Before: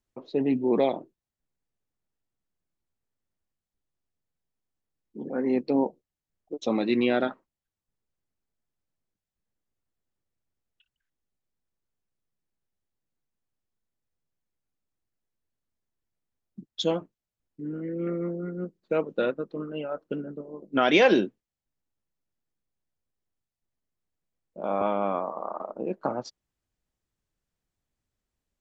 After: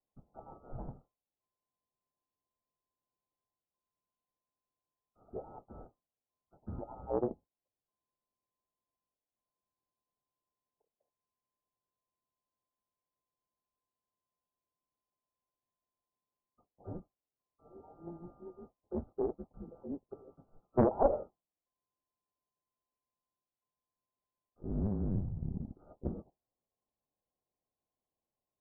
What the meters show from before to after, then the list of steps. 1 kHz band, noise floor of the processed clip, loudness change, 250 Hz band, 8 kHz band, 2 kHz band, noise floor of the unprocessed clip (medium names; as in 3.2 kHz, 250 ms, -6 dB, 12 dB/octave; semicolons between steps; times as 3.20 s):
-11.0 dB, under -85 dBFS, -10.0 dB, -12.0 dB, no reading, under -30 dB, under -85 dBFS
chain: split-band scrambler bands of 1 kHz; modulation noise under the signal 20 dB; steep low-pass 850 Hz 72 dB/octave; loudspeaker Doppler distortion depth 0.88 ms; trim +3.5 dB